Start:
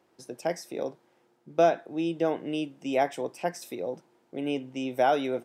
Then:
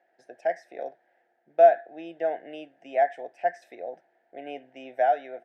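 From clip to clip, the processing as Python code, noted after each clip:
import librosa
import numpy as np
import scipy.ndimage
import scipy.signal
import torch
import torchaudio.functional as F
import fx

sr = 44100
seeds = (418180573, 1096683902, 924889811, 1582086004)

y = fx.double_bandpass(x, sr, hz=1100.0, octaves=1.3)
y = fx.rider(y, sr, range_db=5, speed_s=0.5)
y = y * 10.0 ** (3.0 / 20.0)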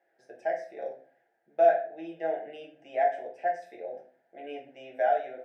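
y = fx.room_shoebox(x, sr, seeds[0], volume_m3=32.0, walls='mixed', distance_m=0.65)
y = y * 10.0 ** (-6.5 / 20.0)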